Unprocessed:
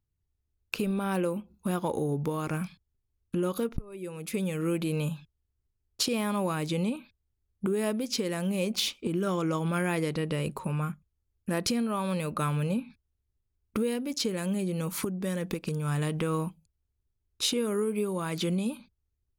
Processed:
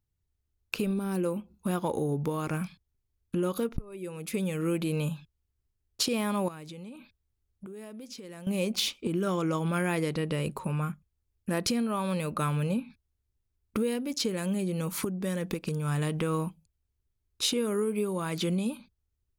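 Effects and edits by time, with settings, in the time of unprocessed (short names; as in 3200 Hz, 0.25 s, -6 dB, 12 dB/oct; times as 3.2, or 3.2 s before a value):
0.93–1.25 spectral gain 440–3900 Hz -8 dB
6.48–8.47 compressor, threshold -41 dBFS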